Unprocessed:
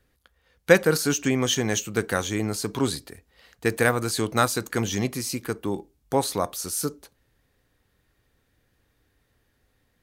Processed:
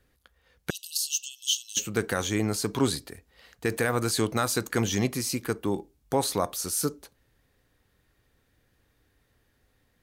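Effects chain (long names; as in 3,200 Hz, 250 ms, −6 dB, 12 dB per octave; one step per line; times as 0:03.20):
brickwall limiter −12.5 dBFS, peak gain reduction 11 dB
0:00.70–0:01.77: linear-phase brick-wall high-pass 2,600 Hz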